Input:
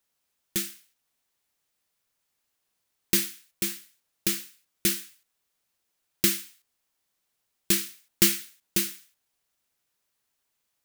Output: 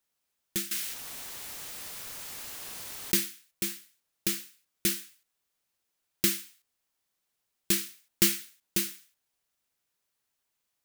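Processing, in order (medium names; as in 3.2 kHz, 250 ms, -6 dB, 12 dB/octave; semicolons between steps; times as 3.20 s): 0.71–3.16 s: level flattener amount 70%; trim -3 dB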